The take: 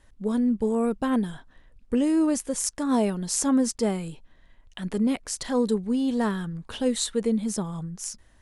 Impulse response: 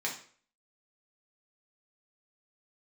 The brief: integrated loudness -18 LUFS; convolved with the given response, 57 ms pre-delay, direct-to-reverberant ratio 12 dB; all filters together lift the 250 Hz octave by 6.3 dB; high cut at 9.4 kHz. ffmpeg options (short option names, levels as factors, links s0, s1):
-filter_complex "[0:a]lowpass=9400,equalizer=f=250:t=o:g=7,asplit=2[s0][s1];[1:a]atrim=start_sample=2205,adelay=57[s2];[s1][s2]afir=irnorm=-1:irlink=0,volume=0.141[s3];[s0][s3]amix=inputs=2:normalize=0,volume=1.33"